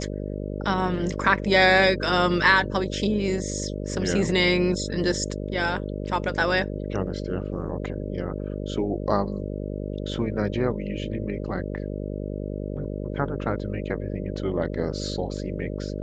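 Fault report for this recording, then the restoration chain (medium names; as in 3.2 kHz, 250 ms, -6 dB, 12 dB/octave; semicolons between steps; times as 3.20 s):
buzz 50 Hz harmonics 12 -31 dBFS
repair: de-hum 50 Hz, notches 12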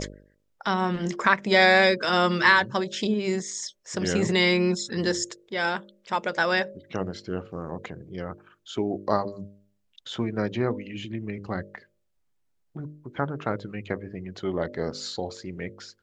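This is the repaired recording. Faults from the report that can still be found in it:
nothing left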